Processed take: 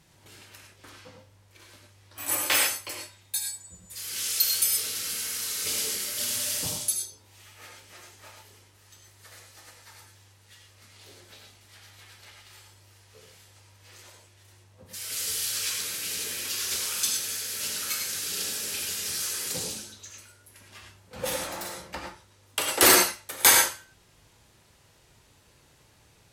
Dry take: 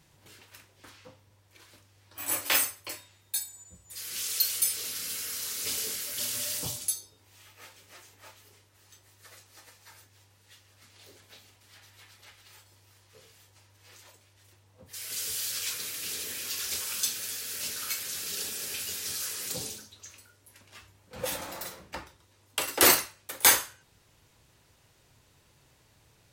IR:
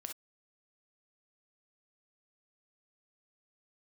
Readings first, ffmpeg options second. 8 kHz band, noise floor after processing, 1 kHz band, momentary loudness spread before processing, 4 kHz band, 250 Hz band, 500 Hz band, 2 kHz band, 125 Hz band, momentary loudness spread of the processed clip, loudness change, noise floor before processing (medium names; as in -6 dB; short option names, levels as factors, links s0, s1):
+4.0 dB, -60 dBFS, +4.0 dB, 19 LU, +4.0 dB, +4.0 dB, +4.0 dB, +4.0 dB, +3.0 dB, 18 LU, +3.0 dB, -64 dBFS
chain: -filter_complex "[1:a]atrim=start_sample=2205,asetrate=25578,aresample=44100[s0];[0:a][s0]afir=irnorm=-1:irlink=0,volume=1.5"